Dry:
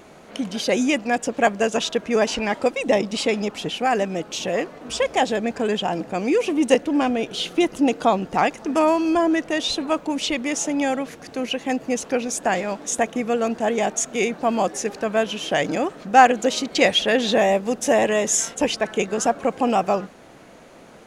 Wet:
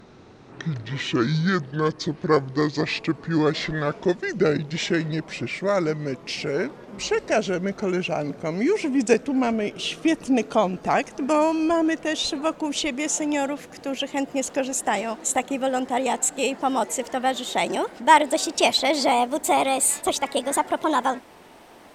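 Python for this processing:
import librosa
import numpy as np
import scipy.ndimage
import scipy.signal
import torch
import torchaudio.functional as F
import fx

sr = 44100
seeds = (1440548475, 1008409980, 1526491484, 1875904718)

y = fx.speed_glide(x, sr, from_pct=58, to_pct=134)
y = fx.dynamic_eq(y, sr, hz=7400.0, q=2.0, threshold_db=-44.0, ratio=4.0, max_db=4)
y = y * 10.0 ** (-2.0 / 20.0)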